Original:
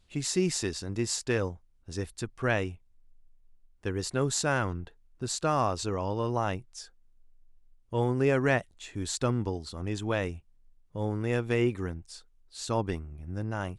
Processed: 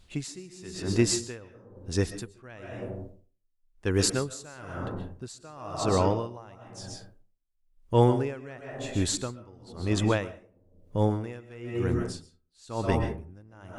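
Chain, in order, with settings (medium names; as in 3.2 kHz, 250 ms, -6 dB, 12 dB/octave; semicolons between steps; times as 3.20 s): 3.91–4.74 s: treble shelf 4.9 kHz +6 dB; reverberation RT60 0.75 s, pre-delay 90 ms, DRR 5 dB; logarithmic tremolo 1 Hz, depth 28 dB; trim +8 dB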